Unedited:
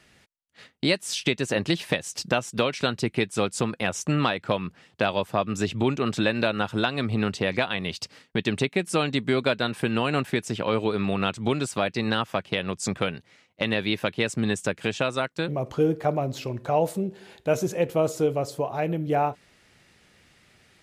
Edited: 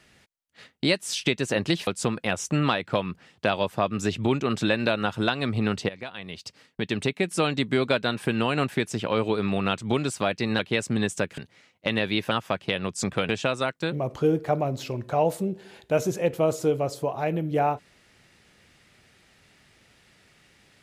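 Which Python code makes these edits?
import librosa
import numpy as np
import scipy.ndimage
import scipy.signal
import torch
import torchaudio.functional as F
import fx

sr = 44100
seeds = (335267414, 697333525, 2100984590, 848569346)

y = fx.edit(x, sr, fx.cut(start_s=1.87, length_s=1.56),
    fx.fade_in_from(start_s=7.45, length_s=1.43, floor_db=-16.5),
    fx.swap(start_s=12.15, length_s=0.98, other_s=14.06, other_length_s=0.79), tone=tone)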